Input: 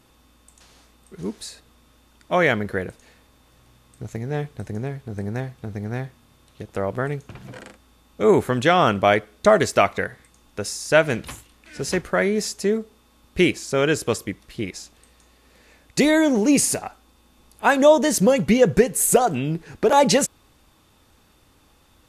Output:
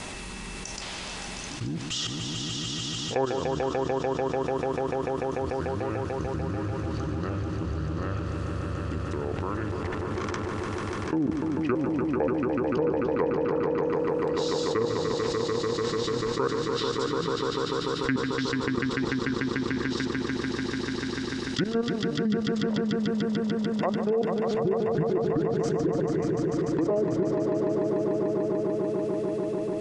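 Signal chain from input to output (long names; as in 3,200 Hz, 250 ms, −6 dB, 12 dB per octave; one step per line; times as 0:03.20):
treble cut that deepens with the level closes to 570 Hz, closed at −12 dBFS
low-shelf EQ 460 Hz −8.5 dB
output level in coarse steps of 22 dB
rotating-speaker cabinet horn 1.1 Hz
wrong playback speed 45 rpm record played at 33 rpm
on a send: echo that builds up and dies away 147 ms, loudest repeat 5, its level −8.5 dB
on the sum: envelope flattener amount 70%
level −2.5 dB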